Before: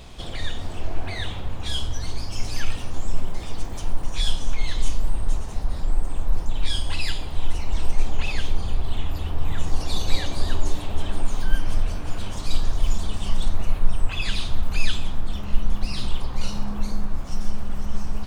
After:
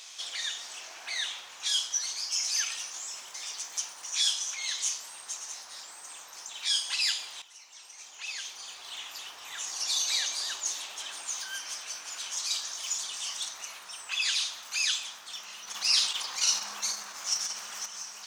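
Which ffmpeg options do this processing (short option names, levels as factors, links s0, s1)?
-filter_complex "[0:a]asettb=1/sr,asplit=3[s0][s1][s2];[s0]atrim=end=15.654[s3];[s1]atrim=start=15.65:end=17.86,asetpts=PTS-STARTPTS,afade=t=in:d=0.004:c=qsin,afade=t=out:st=2.206:d=0.004:c=qsin,acontrast=76[s4];[s2]atrim=start=17.856[s5];[s3][s4]acrossfade=d=0.004:c1=hsin:c2=qsin[s6];[s6][s5]acrossfade=d=0.004:c1=qsin:c2=hsin,asplit=2[s7][s8];[s7]atrim=end=7.42,asetpts=PTS-STARTPTS,afade=t=out:st=7.416:d=0.004:c=hsin:silence=0.188365[s9];[s8]atrim=start=7.42,asetpts=PTS-STARTPTS,afade=t=in:d=1.47:c=qua:silence=0.188365[s10];[s9][s10]concat=n=2:v=0:a=1,highpass=1500,equalizer=f=6100:t=o:w=0.65:g=13.5"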